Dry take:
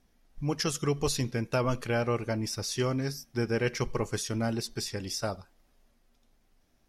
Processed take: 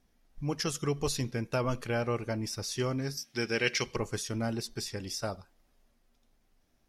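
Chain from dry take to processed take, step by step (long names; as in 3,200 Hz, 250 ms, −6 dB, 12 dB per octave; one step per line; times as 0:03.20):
0:03.17–0:03.96: meter weighting curve D
level −2.5 dB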